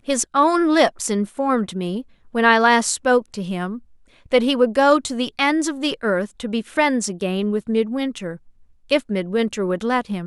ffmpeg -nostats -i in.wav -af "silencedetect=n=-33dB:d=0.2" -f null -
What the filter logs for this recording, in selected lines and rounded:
silence_start: 2.02
silence_end: 2.35 | silence_duration: 0.33
silence_start: 3.78
silence_end: 4.32 | silence_duration: 0.54
silence_start: 8.36
silence_end: 8.90 | silence_duration: 0.53